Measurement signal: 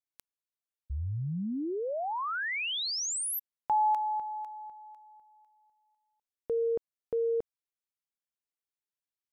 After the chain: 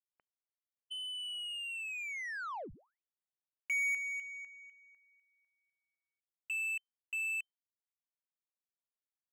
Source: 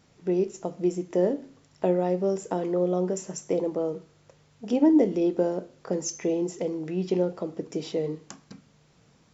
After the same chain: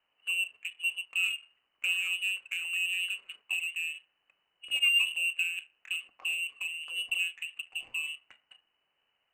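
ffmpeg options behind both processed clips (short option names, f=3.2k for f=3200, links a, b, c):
-af "lowpass=f=2.6k:t=q:w=0.5098,lowpass=f=2.6k:t=q:w=0.6013,lowpass=f=2.6k:t=q:w=0.9,lowpass=f=2.6k:t=q:w=2.563,afreqshift=-3100,adynamicsmooth=sensitivity=7:basefreq=1.6k,volume=-7dB"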